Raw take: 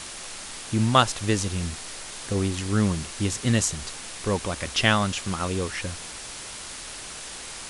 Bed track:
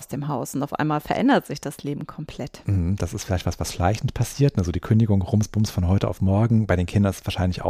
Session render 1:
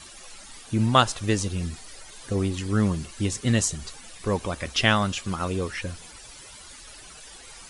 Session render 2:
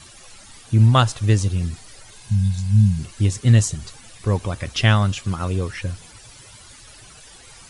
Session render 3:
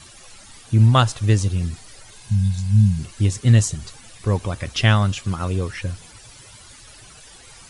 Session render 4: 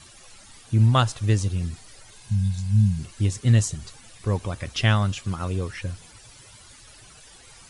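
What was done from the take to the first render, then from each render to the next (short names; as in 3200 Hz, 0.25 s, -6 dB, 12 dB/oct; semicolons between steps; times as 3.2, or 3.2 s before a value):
denoiser 13 dB, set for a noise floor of -38 dBFS
bell 110 Hz +12.5 dB 0.84 oct; 2.22–2.97 spectral repair 220–3400 Hz before
nothing audible
gain -4 dB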